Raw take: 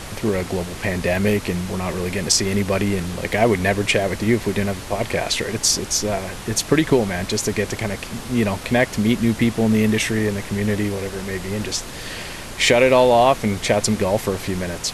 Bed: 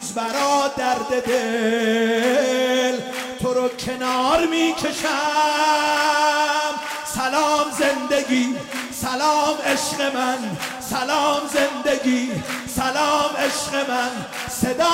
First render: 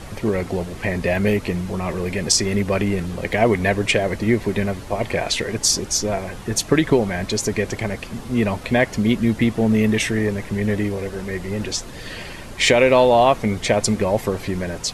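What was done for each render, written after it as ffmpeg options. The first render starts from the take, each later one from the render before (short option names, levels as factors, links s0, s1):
-af "afftdn=nr=8:nf=-34"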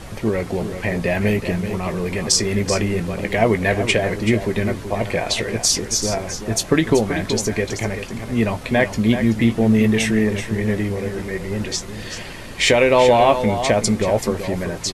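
-filter_complex "[0:a]asplit=2[s0][s1];[s1]adelay=18,volume=0.266[s2];[s0][s2]amix=inputs=2:normalize=0,aecho=1:1:381:0.335"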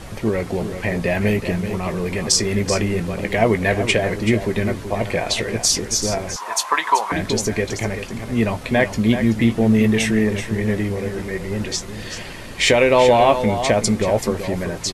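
-filter_complex "[0:a]asettb=1/sr,asplit=3[s0][s1][s2];[s0]atrim=end=6.364[s3];[s1]atrim=start=6.36:end=7.12,asetpts=PTS-STARTPTS,afade=t=in:d=0.004:c=qsin,afade=t=out:st=0.756:d=0.004:c=qsin,highpass=f=990:t=q:w=9.8[s4];[s2]atrim=start=7.116[s5];[s3][s4]acrossfade=d=0.004:c1=hsin:c2=qsin[s6];[s6][s5]acrossfade=d=0.004:c1=qsin:c2=hsin"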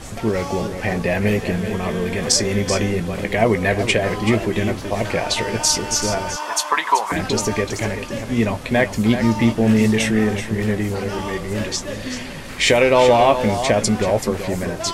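-filter_complex "[1:a]volume=0.266[s0];[0:a][s0]amix=inputs=2:normalize=0"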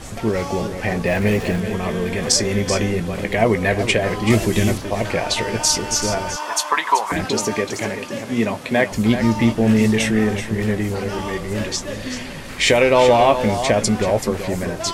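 -filter_complex "[0:a]asettb=1/sr,asplit=3[s0][s1][s2];[s0]atrim=end=1.064[s3];[s1]atrim=start=1.06:end=1.6,asetpts=PTS-STARTPTS,afade=t=in:d=0.004:c=qsin,afade=t=out:st=0.536:d=0.004:c=qsin,aeval=exprs='val(0)+0.5*0.0266*sgn(val(0))':c=same[s4];[s2]atrim=start=1.596[s5];[s3][s4]acrossfade=d=0.004:c1=hsin:c2=qsin[s6];[s6][s5]acrossfade=d=0.004:c1=qsin:c2=hsin,asettb=1/sr,asplit=3[s7][s8][s9];[s7]atrim=end=4.304[s10];[s8]atrim=start=4.3:end=4.78,asetpts=PTS-STARTPTS,afade=t=in:d=0.004:c=qsin,afade=t=out:st=0.476:d=0.004:c=qsin,bass=f=250:g=5,treble=f=4000:g=13[s11];[s9]atrim=start=4.776[s12];[s10][s11]acrossfade=d=0.004:c1=hsin:c2=qsin[s13];[s13][s12]acrossfade=d=0.004:c1=qsin:c2=hsin,asettb=1/sr,asplit=3[s14][s15][s16];[s14]atrim=end=7.254[s17];[s15]atrim=start=7.25:end=8.92,asetpts=PTS-STARTPTS,afade=t=in:d=0.004:c=qsin,afade=t=out:st=1.666:d=0.004:c=qsin,highpass=150[s18];[s16]atrim=start=8.916[s19];[s17][s18]acrossfade=d=0.004:c1=hsin:c2=qsin[s20];[s20][s19]acrossfade=d=0.004:c1=qsin:c2=hsin"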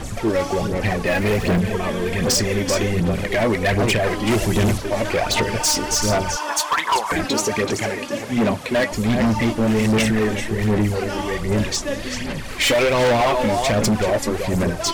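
-af "aphaser=in_gain=1:out_gain=1:delay=3.6:decay=0.54:speed=1.3:type=sinusoidal,volume=5.31,asoftclip=hard,volume=0.188"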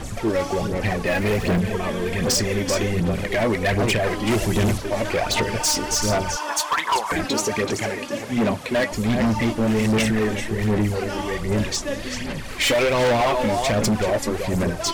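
-af "volume=0.794"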